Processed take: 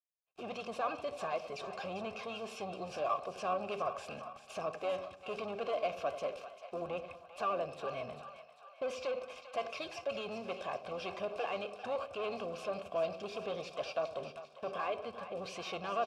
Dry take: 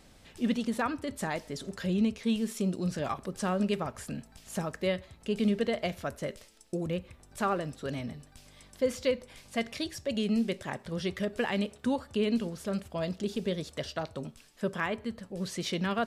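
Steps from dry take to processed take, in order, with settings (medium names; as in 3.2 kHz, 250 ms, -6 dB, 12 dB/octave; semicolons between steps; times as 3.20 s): gate -49 dBFS, range -39 dB; peaking EQ 710 Hz -4.5 dB 1 oct; comb 1.9 ms, depth 58%; dynamic bell 5.3 kHz, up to +7 dB, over -59 dBFS, Q 2.7; waveshaping leveller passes 3; peak limiter -25 dBFS, peak gain reduction 9 dB; harmony voices -12 st -11 dB; vowel filter a; two-band feedback delay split 630 Hz, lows 86 ms, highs 396 ms, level -11 dB; trim +6.5 dB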